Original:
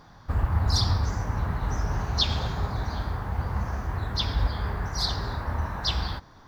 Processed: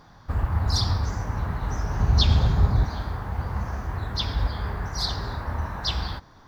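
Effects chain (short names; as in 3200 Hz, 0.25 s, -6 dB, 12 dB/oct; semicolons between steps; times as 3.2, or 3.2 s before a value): 2–2.86 low shelf 290 Hz +10.5 dB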